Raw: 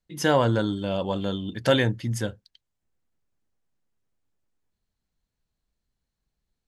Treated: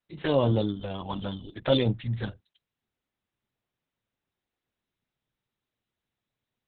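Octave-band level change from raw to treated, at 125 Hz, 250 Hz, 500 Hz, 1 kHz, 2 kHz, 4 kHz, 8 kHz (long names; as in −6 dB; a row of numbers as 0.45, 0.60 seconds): −1.5 dB, −2.5 dB, −3.0 dB, −6.5 dB, −10.5 dB, −3.5 dB, below −35 dB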